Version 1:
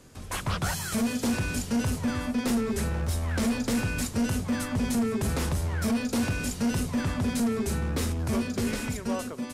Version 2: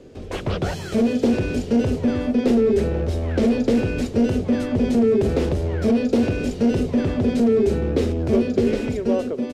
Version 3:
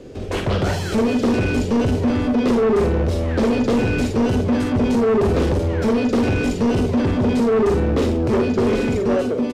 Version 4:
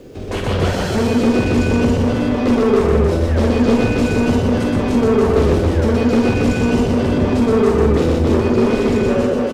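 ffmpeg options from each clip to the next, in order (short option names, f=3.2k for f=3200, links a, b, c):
-af "firequalizer=gain_entry='entry(170,0);entry(400,12);entry(1000,-7);entry(2800,-2);entry(10000,-19)':delay=0.05:min_phase=1,volume=4.5dB"
-af "aecho=1:1:45|55:0.447|0.316,asoftclip=type=tanh:threshold=-19dB,volume=5.5dB"
-filter_complex "[0:a]asplit=2[a][b];[b]aecho=0:1:122.4|279.9:0.794|0.708[c];[a][c]amix=inputs=2:normalize=0,acrusher=bits=9:mix=0:aa=0.000001"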